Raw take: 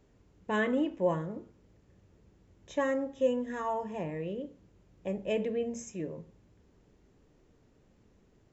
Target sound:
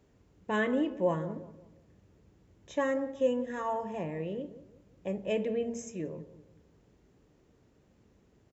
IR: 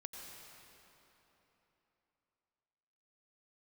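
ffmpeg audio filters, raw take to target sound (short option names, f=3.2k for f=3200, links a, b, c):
-filter_complex "[0:a]highpass=46,asplit=2[a][b];[b]adelay=180,lowpass=f=1.1k:p=1,volume=-14dB,asplit=2[c][d];[d]adelay=180,lowpass=f=1.1k:p=1,volume=0.41,asplit=2[e][f];[f]adelay=180,lowpass=f=1.1k:p=1,volume=0.41,asplit=2[g][h];[h]adelay=180,lowpass=f=1.1k:p=1,volume=0.41[i];[c][e][g][i]amix=inputs=4:normalize=0[j];[a][j]amix=inputs=2:normalize=0"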